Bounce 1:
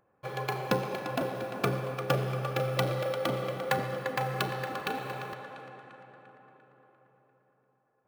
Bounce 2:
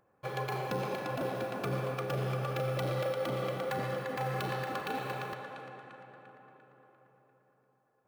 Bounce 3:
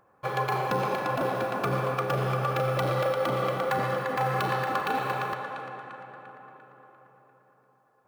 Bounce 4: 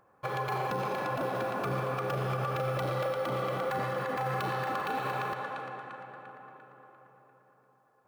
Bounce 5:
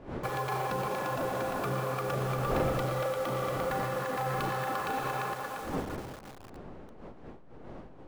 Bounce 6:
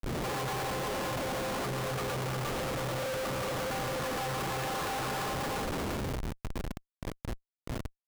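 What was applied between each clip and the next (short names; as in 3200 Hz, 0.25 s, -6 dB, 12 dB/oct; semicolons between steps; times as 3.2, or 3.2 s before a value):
limiter -24.5 dBFS, peak gain reduction 10.5 dB
bell 1100 Hz +7 dB 1.2 oct; gain +4.5 dB
limiter -22 dBFS, peak gain reduction 6 dB; gain -1.5 dB
level-crossing sampler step -40.5 dBFS; wind noise 500 Hz -42 dBFS
Schmitt trigger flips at -42.5 dBFS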